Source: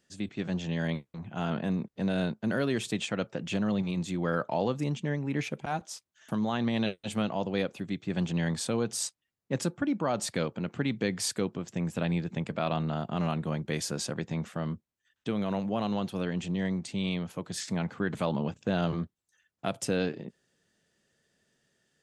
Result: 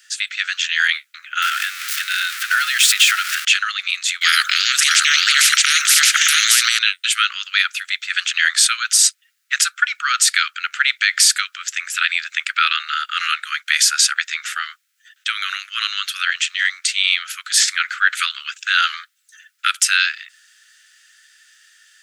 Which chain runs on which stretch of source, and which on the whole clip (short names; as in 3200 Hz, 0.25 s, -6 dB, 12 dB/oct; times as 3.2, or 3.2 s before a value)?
1.42–3.45 zero-crossing step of -34.5 dBFS + compressor 4:1, threshold -28 dBFS
4.21–6.79 echo 0.621 s -4 dB + spectral compressor 10:1
whole clip: steep high-pass 1300 Hz 96 dB/oct; maximiser +25 dB; gain -1 dB